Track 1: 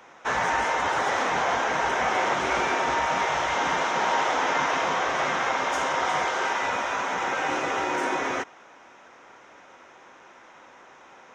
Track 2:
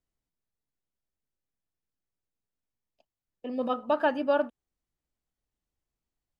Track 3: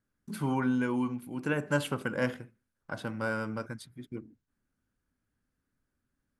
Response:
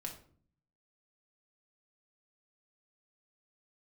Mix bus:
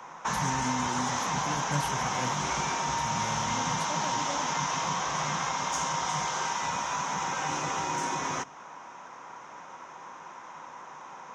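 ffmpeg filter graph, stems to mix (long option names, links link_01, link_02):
-filter_complex "[0:a]equalizer=frequency=160:width_type=o:width=0.67:gain=12,equalizer=frequency=1000:width_type=o:width=0.67:gain=12,equalizer=frequency=6300:width_type=o:width=0.67:gain=8,volume=-2.5dB,asplit=2[link_01][link_02];[link_02]volume=-15.5dB[link_03];[1:a]volume=-3dB[link_04];[2:a]volume=0.5dB[link_05];[3:a]atrim=start_sample=2205[link_06];[link_03][link_06]afir=irnorm=-1:irlink=0[link_07];[link_01][link_04][link_05][link_07]amix=inputs=4:normalize=0,acrossover=split=210|3000[link_08][link_09][link_10];[link_09]acompressor=threshold=-32dB:ratio=4[link_11];[link_08][link_11][link_10]amix=inputs=3:normalize=0"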